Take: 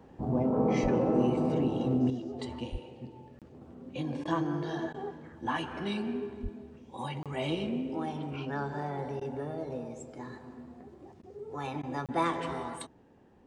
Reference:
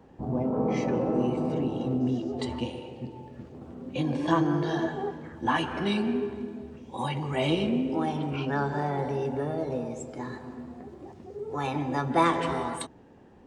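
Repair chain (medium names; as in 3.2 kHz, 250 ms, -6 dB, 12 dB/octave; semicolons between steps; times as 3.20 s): de-plosive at 0.82/2.71/6.42 s; interpolate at 3.39/7.23/12.06 s, 27 ms; interpolate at 4.24/4.93/9.20/11.22/11.82 s, 11 ms; trim 0 dB, from 2.10 s +6.5 dB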